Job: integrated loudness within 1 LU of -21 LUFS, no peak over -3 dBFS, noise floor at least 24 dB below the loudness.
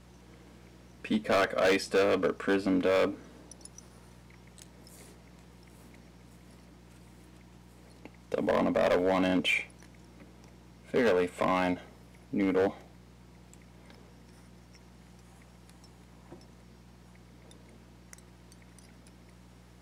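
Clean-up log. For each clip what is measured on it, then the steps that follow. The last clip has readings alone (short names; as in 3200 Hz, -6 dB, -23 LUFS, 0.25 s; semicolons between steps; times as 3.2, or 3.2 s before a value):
clipped 1.3%; flat tops at -21.0 dBFS; hum 60 Hz; harmonics up to 180 Hz; hum level -53 dBFS; loudness -28.5 LUFS; peak -21.0 dBFS; loudness target -21.0 LUFS
-> clip repair -21 dBFS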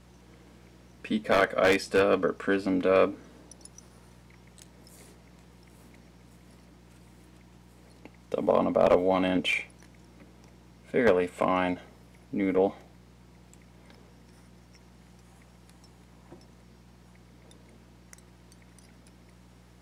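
clipped 0.0%; hum 60 Hz; harmonics up to 180 Hz; hum level -53 dBFS
-> de-hum 60 Hz, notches 3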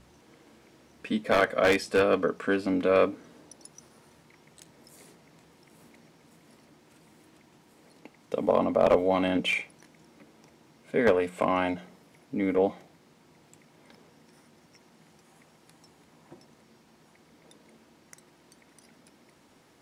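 hum none; loudness -26.0 LUFS; peak -11.5 dBFS; loudness target -21.0 LUFS
-> gain +5 dB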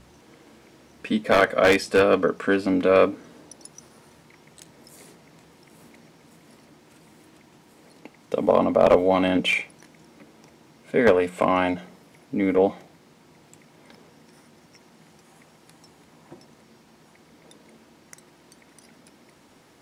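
loudness -21.0 LUFS; peak -6.5 dBFS; noise floor -56 dBFS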